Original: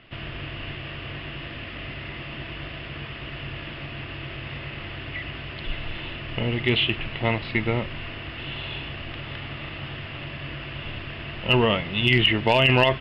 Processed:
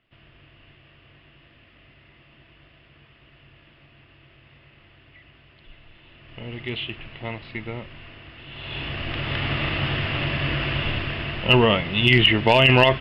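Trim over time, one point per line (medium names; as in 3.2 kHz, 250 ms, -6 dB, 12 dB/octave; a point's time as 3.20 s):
6.02 s -18 dB
6.55 s -8.5 dB
8.47 s -8.5 dB
8.81 s +3 dB
9.51 s +10 dB
10.72 s +10 dB
11.60 s +3 dB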